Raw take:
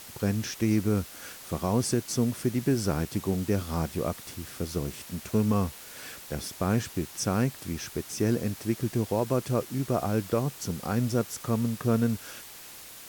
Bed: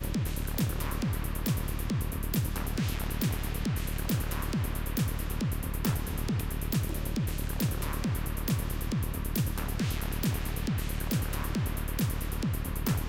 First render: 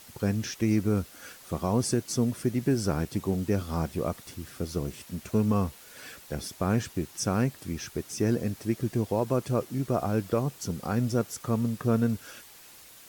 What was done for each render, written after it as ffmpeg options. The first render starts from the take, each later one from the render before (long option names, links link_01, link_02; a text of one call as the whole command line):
ffmpeg -i in.wav -af "afftdn=noise_reduction=6:noise_floor=-46" out.wav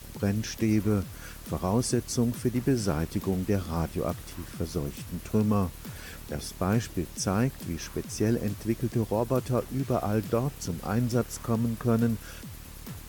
ffmpeg -i in.wav -i bed.wav -filter_complex "[1:a]volume=-12.5dB[link_01];[0:a][link_01]amix=inputs=2:normalize=0" out.wav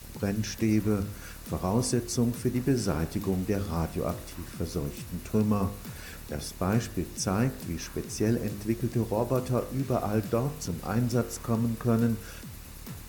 ffmpeg -i in.wav -af "bandreject=frequency=3200:width=15,bandreject=frequency=50.82:width_type=h:width=4,bandreject=frequency=101.64:width_type=h:width=4,bandreject=frequency=152.46:width_type=h:width=4,bandreject=frequency=203.28:width_type=h:width=4,bandreject=frequency=254.1:width_type=h:width=4,bandreject=frequency=304.92:width_type=h:width=4,bandreject=frequency=355.74:width_type=h:width=4,bandreject=frequency=406.56:width_type=h:width=4,bandreject=frequency=457.38:width_type=h:width=4,bandreject=frequency=508.2:width_type=h:width=4,bandreject=frequency=559.02:width_type=h:width=4,bandreject=frequency=609.84:width_type=h:width=4,bandreject=frequency=660.66:width_type=h:width=4,bandreject=frequency=711.48:width_type=h:width=4,bandreject=frequency=762.3:width_type=h:width=4,bandreject=frequency=813.12:width_type=h:width=4,bandreject=frequency=863.94:width_type=h:width=4,bandreject=frequency=914.76:width_type=h:width=4,bandreject=frequency=965.58:width_type=h:width=4,bandreject=frequency=1016.4:width_type=h:width=4,bandreject=frequency=1067.22:width_type=h:width=4,bandreject=frequency=1118.04:width_type=h:width=4,bandreject=frequency=1168.86:width_type=h:width=4,bandreject=frequency=1219.68:width_type=h:width=4,bandreject=frequency=1270.5:width_type=h:width=4,bandreject=frequency=1321.32:width_type=h:width=4,bandreject=frequency=1372.14:width_type=h:width=4,bandreject=frequency=1422.96:width_type=h:width=4,bandreject=frequency=1473.78:width_type=h:width=4,bandreject=frequency=1524.6:width_type=h:width=4,bandreject=frequency=1575.42:width_type=h:width=4,bandreject=frequency=1626.24:width_type=h:width=4,bandreject=frequency=1677.06:width_type=h:width=4,bandreject=frequency=1727.88:width_type=h:width=4,bandreject=frequency=1778.7:width_type=h:width=4,bandreject=frequency=1829.52:width_type=h:width=4,bandreject=frequency=1880.34:width_type=h:width=4,bandreject=frequency=1931.16:width_type=h:width=4" out.wav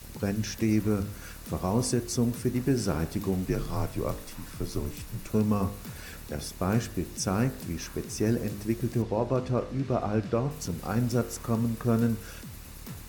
ffmpeg -i in.wav -filter_complex "[0:a]asettb=1/sr,asplit=3[link_01][link_02][link_03];[link_01]atrim=end=3.464[link_04];[link_02]atrim=start=3.46:end=5.31,asetpts=PTS-STARTPTS,afade=type=in:duration=0.004:curve=qsin,afade=type=out:start_time=1.846:duration=0.004:curve=qsin,afreqshift=-61[link_05];[link_03]atrim=start=5.306[link_06];[link_04][link_05]acrossfade=duration=0.004:curve1=hsin:curve2=qsin[link_07];[link_07][link_06]acrossfade=duration=0.004:curve1=qsin:curve2=hsin,asettb=1/sr,asplit=3[link_08][link_09][link_10];[link_08]atrim=end=9.024[link_11];[link_09]atrim=start=9.02:end=10.51,asetpts=PTS-STARTPTS,afade=type=in:duration=0.004:curve=qsin,afade=type=out:start_time=1.486:duration=0.004:curve=qsin,lowpass=4700[link_12];[link_10]atrim=start=10.506[link_13];[link_11][link_12]acrossfade=duration=0.004:curve1=hsin:curve2=qsin[link_14];[link_14][link_13]acrossfade=duration=0.004:curve1=qsin:curve2=hsin" out.wav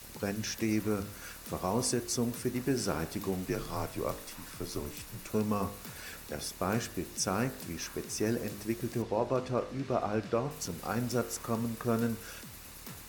ffmpeg -i in.wav -af "lowshelf=frequency=260:gain=-10.5" out.wav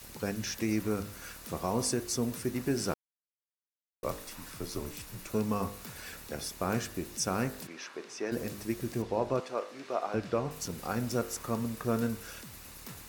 ffmpeg -i in.wav -filter_complex "[0:a]asplit=3[link_01][link_02][link_03];[link_01]afade=type=out:start_time=7.66:duration=0.02[link_04];[link_02]highpass=400,lowpass=4200,afade=type=in:start_time=7.66:duration=0.02,afade=type=out:start_time=8.31:duration=0.02[link_05];[link_03]afade=type=in:start_time=8.31:duration=0.02[link_06];[link_04][link_05][link_06]amix=inputs=3:normalize=0,asettb=1/sr,asplit=3[link_07][link_08][link_09];[link_07]atrim=end=9.404[link_10];[link_08]atrim=start=9.4:end=10.14,asetpts=PTS-STARTPTS,afade=type=in:duration=0.004:curve=qsin,afade=type=out:start_time=0.736:duration=0.004:curve=qsin,highpass=460[link_11];[link_09]atrim=start=10.136[link_12];[link_10][link_11]acrossfade=duration=0.004:curve1=hsin:curve2=qsin[link_13];[link_13][link_12]acrossfade=duration=0.004:curve1=qsin:curve2=hsin,asplit=3[link_14][link_15][link_16];[link_14]atrim=end=2.94,asetpts=PTS-STARTPTS,afade=type=out:start_time=2.936:duration=0.004:curve=hsin[link_17];[link_15]atrim=start=2.94:end=4.03,asetpts=PTS-STARTPTS,volume=0[link_18];[link_16]atrim=start=4.03,asetpts=PTS-STARTPTS,afade=type=in:duration=0.004:curve=hsin[link_19];[link_17][link_18][link_19]concat=n=3:v=0:a=1" out.wav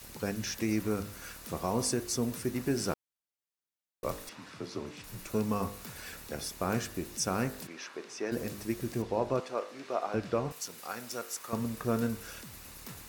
ffmpeg -i in.wav -filter_complex "[0:a]asettb=1/sr,asplit=3[link_01][link_02][link_03];[link_01]atrim=end=4.294[link_04];[link_02]atrim=start=4.29:end=5.04,asetpts=PTS-STARTPTS,afade=type=in:duration=0.004:curve=qsin,afade=type=out:start_time=0.746:duration=0.004:curve=qsin,highpass=130,lowpass=4600[link_05];[link_03]atrim=start=5.036[link_06];[link_04][link_05]acrossfade=duration=0.004:curve1=hsin:curve2=qsin[link_07];[link_07][link_06]acrossfade=duration=0.004:curve1=qsin:curve2=hsin,asettb=1/sr,asplit=3[link_08][link_09][link_10];[link_08]atrim=end=10.524[link_11];[link_09]atrim=start=10.52:end=11.53,asetpts=PTS-STARTPTS,afade=type=in:duration=0.004:curve=qsin,afade=type=out:start_time=1.006:duration=0.004:curve=qsin,highpass=frequency=1100:poles=1[link_12];[link_10]atrim=start=11.526[link_13];[link_11][link_12]acrossfade=duration=0.004:curve1=hsin:curve2=qsin[link_14];[link_14][link_13]acrossfade=duration=0.004:curve1=qsin:curve2=hsin" out.wav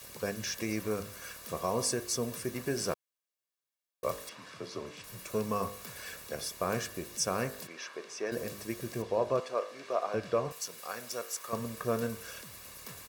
ffmpeg -i in.wav -af "highpass=frequency=180:poles=1,aecho=1:1:1.8:0.43" out.wav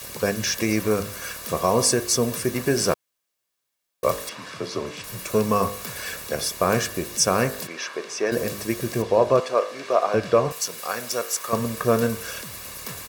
ffmpeg -i in.wav -af "volume=11.5dB" out.wav